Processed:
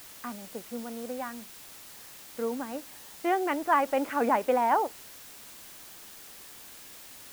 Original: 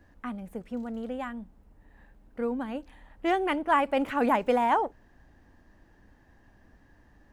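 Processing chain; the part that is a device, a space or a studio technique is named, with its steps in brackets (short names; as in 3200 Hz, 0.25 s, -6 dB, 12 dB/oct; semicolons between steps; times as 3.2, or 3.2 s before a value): wax cylinder (BPF 270–2300 Hz; wow and flutter; white noise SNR 16 dB)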